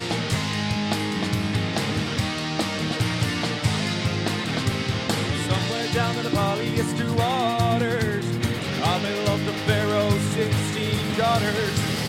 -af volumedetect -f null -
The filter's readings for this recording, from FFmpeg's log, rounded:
mean_volume: -23.7 dB
max_volume: -7.4 dB